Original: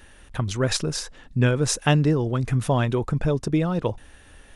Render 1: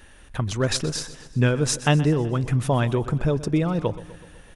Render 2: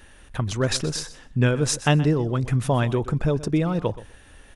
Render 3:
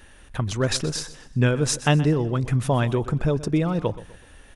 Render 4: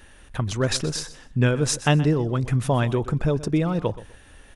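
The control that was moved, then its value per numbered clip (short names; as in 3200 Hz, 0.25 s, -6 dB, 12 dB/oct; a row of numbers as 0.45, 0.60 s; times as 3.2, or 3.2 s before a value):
feedback echo, feedback: 59, 16, 40, 25%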